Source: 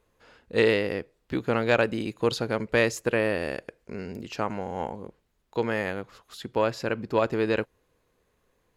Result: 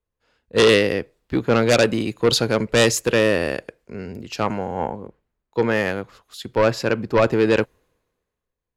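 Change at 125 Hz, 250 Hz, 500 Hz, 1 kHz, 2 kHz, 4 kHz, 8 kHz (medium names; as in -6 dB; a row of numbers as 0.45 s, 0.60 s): +8.0 dB, +7.5 dB, +7.0 dB, +6.0 dB, +6.0 dB, +12.0 dB, +14.5 dB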